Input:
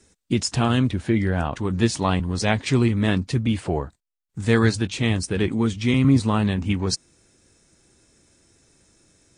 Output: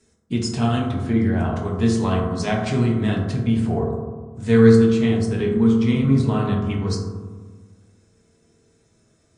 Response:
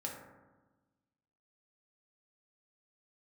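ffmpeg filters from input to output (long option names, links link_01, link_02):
-filter_complex "[0:a]asetnsamples=nb_out_samples=441:pad=0,asendcmd='4.75 highshelf g -8',highshelf=frequency=6800:gain=-2.5[link_01];[1:a]atrim=start_sample=2205,asetrate=36162,aresample=44100[link_02];[link_01][link_02]afir=irnorm=-1:irlink=0,volume=-2.5dB"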